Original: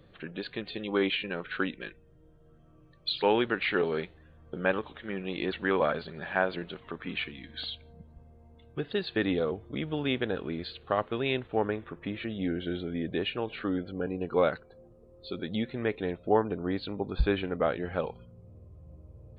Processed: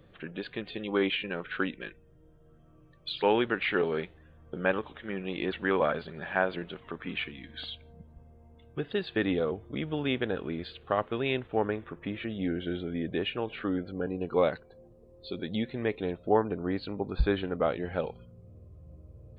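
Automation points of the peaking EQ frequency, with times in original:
peaking EQ -8.5 dB 0.23 oct
13.67 s 4.2 kHz
14.52 s 1.3 kHz
15.81 s 1.3 kHz
16.53 s 3.5 kHz
17.11 s 3.5 kHz
18.17 s 890 Hz

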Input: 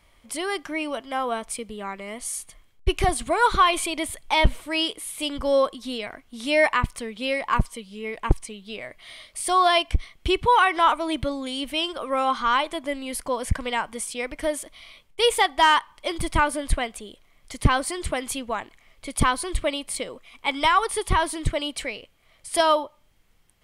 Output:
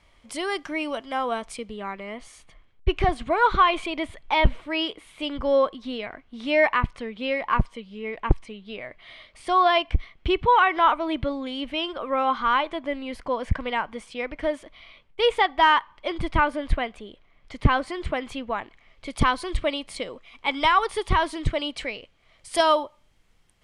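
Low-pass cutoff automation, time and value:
1.30 s 7.2 kHz
2.20 s 3 kHz
18.48 s 3 kHz
19.10 s 5 kHz
21.96 s 5 kHz
22.81 s 9.1 kHz

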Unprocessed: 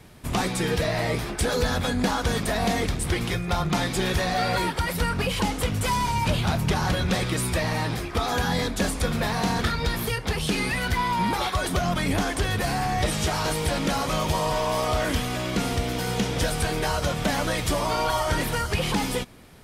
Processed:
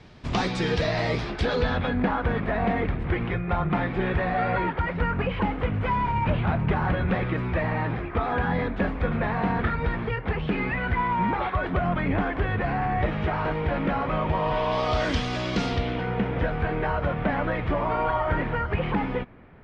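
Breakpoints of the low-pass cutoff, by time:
low-pass 24 dB/octave
1.18 s 5.3 kHz
2.10 s 2.3 kHz
14.31 s 2.3 kHz
15.04 s 5.4 kHz
15.63 s 5.4 kHz
16.11 s 2.2 kHz

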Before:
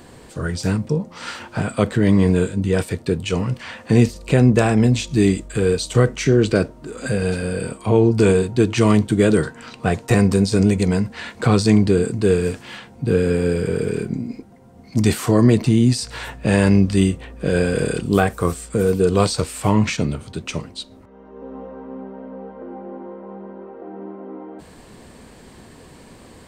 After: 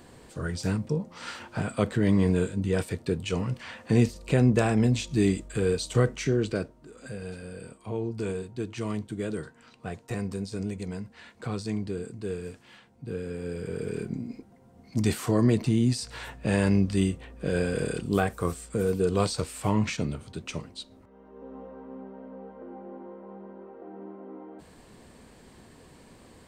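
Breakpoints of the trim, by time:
6.07 s -7.5 dB
7.05 s -17 dB
13.33 s -17 dB
14.04 s -8.5 dB

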